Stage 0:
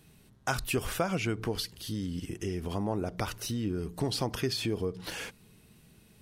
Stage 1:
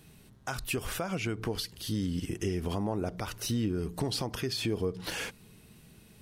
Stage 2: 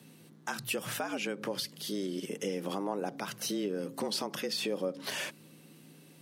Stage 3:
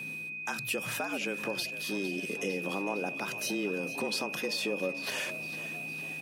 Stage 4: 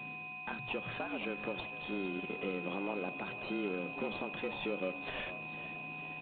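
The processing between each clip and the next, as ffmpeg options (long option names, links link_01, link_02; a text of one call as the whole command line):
ffmpeg -i in.wav -af "alimiter=level_in=0.5dB:limit=-24dB:level=0:latency=1:release=330,volume=-0.5dB,volume=3dB" out.wav
ffmpeg -i in.wav -af "lowshelf=frequency=250:gain=-6.5,aeval=exprs='val(0)+0.00141*(sin(2*PI*60*n/s)+sin(2*PI*2*60*n/s)/2+sin(2*PI*3*60*n/s)/3+sin(2*PI*4*60*n/s)/4+sin(2*PI*5*60*n/s)/5)':channel_layout=same,afreqshift=97" out.wav
ffmpeg -i in.wav -filter_complex "[0:a]areverse,acompressor=mode=upward:threshold=-39dB:ratio=2.5,areverse,aeval=exprs='val(0)+0.0141*sin(2*PI*2500*n/s)':channel_layout=same,asplit=7[link_01][link_02][link_03][link_04][link_05][link_06][link_07];[link_02]adelay=456,afreqshift=75,volume=-14dB[link_08];[link_03]adelay=912,afreqshift=150,volume=-18.9dB[link_09];[link_04]adelay=1368,afreqshift=225,volume=-23.8dB[link_10];[link_05]adelay=1824,afreqshift=300,volume=-28.6dB[link_11];[link_06]adelay=2280,afreqshift=375,volume=-33.5dB[link_12];[link_07]adelay=2736,afreqshift=450,volume=-38.4dB[link_13];[link_01][link_08][link_09][link_10][link_11][link_12][link_13]amix=inputs=7:normalize=0" out.wav
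ffmpeg -i in.wav -filter_complex "[0:a]asplit=2[link_01][link_02];[link_02]acrusher=samples=25:mix=1:aa=0.000001,volume=-6dB[link_03];[link_01][link_03]amix=inputs=2:normalize=0,volume=-6.5dB" -ar 8000 -c:a adpcm_g726 -b:a 32k out.wav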